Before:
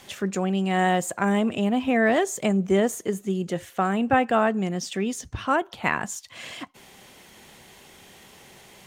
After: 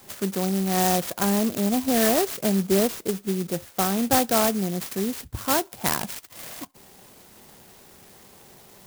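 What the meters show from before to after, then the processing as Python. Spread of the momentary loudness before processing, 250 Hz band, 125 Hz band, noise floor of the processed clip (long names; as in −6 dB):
11 LU, 0.0 dB, 0.0 dB, −51 dBFS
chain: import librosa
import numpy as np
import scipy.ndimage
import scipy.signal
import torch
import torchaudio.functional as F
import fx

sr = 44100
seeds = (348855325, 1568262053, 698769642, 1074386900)

y = fx.clock_jitter(x, sr, seeds[0], jitter_ms=0.13)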